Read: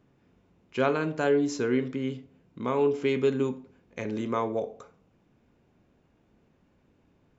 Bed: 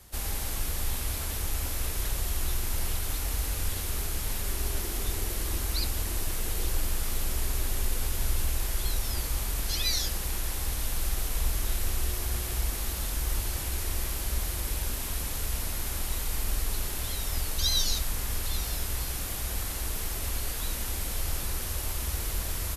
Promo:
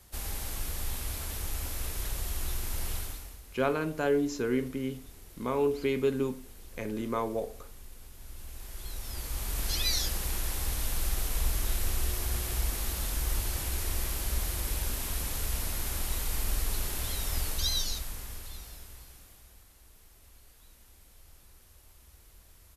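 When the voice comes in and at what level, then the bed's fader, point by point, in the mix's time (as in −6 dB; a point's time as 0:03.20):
2.80 s, −3.0 dB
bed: 0:03.00 −4 dB
0:03.42 −20 dB
0:08.16 −20 dB
0:09.65 −1 dB
0:17.47 −1 dB
0:19.67 −25 dB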